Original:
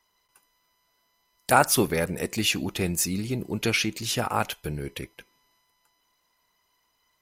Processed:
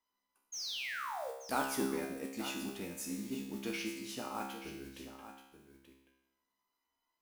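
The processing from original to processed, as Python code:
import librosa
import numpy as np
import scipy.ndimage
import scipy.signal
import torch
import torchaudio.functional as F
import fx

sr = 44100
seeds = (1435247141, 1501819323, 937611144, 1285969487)

p1 = fx.graphic_eq(x, sr, hz=(125, 250, 1000), db=(-11, 12, 4))
p2 = fx.spec_paint(p1, sr, seeds[0], shape='fall', start_s=0.52, length_s=0.79, low_hz=450.0, high_hz=6700.0, level_db=-23.0)
p3 = fx.mod_noise(p2, sr, seeds[1], snr_db=17)
p4 = fx.comb_fb(p3, sr, f0_hz=67.0, decay_s=0.87, harmonics='all', damping=0.0, mix_pct=90)
p5 = p4 + fx.echo_single(p4, sr, ms=881, db=-12.0, dry=0)
y = p5 * 10.0 ** (-6.0 / 20.0)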